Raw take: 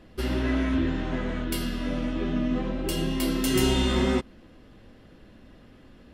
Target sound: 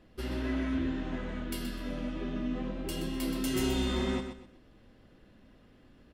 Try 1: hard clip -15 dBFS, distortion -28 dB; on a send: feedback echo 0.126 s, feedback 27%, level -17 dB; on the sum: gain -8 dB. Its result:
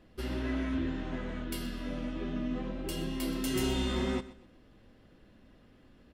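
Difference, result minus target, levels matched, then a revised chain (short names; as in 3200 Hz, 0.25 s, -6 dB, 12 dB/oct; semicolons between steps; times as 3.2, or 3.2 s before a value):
echo-to-direct -8.5 dB
hard clip -15 dBFS, distortion -28 dB; on a send: feedback echo 0.126 s, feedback 27%, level -8.5 dB; on the sum: gain -8 dB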